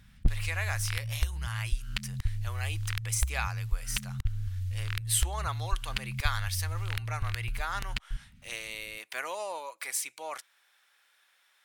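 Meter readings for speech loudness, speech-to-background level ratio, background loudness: -36.0 LUFS, -0.5 dB, -35.5 LUFS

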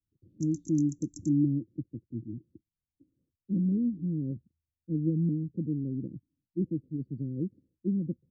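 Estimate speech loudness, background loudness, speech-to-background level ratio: -32.0 LUFS, -48.5 LUFS, 16.5 dB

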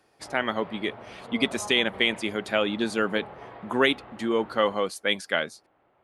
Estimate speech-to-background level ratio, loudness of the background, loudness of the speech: 17.0 dB, -43.5 LUFS, -26.5 LUFS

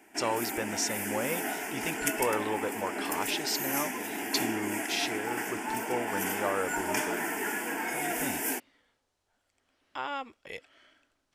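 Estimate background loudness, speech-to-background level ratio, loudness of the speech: -32.5 LUFS, -2.5 dB, -35.0 LUFS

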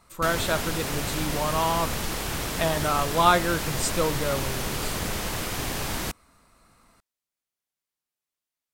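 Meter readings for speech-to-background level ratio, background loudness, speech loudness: 3.0 dB, -29.5 LUFS, -26.5 LUFS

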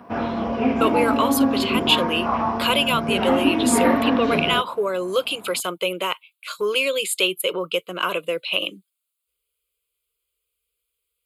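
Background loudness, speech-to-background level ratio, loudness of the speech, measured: -22.0 LUFS, -1.0 dB, -23.0 LUFS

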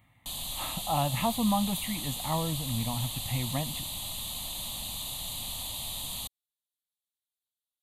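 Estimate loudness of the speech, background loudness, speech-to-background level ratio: -32.0 LUFS, -34.5 LUFS, 2.5 dB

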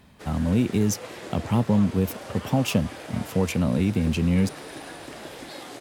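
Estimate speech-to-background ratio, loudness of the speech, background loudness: 14.5 dB, -25.0 LUFS, -39.5 LUFS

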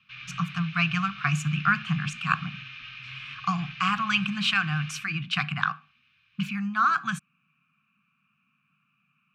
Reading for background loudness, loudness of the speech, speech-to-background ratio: -40.0 LUFS, -27.0 LUFS, 13.0 dB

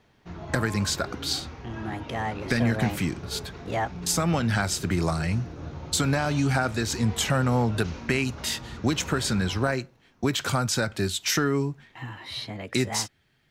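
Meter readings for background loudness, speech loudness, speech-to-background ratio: -39.5 LUFS, -27.0 LUFS, 12.5 dB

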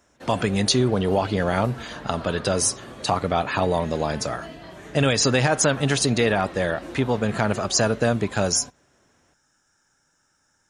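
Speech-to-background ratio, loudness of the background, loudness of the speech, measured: 16.5 dB, -39.5 LUFS, -23.0 LUFS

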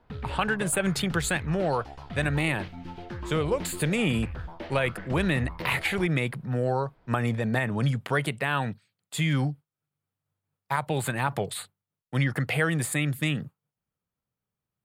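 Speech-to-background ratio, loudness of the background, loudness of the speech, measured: 11.5 dB, -39.5 LUFS, -28.0 LUFS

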